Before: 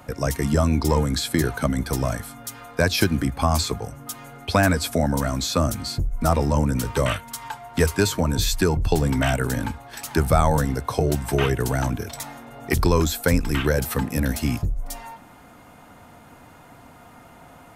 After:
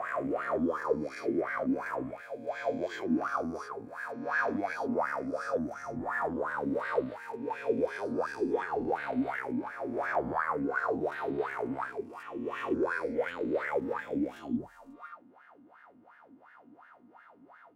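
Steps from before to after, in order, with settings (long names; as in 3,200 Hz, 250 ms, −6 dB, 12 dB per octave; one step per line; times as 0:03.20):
peak hold with a rise ahead of every peak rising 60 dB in 1.94 s
in parallel at +2 dB: brickwall limiter −9.5 dBFS, peak gain reduction 9.5 dB
on the sum: formants moved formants +5 semitones
LFO wah 2.8 Hz 250–1,700 Hz, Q 7.7
level −8 dB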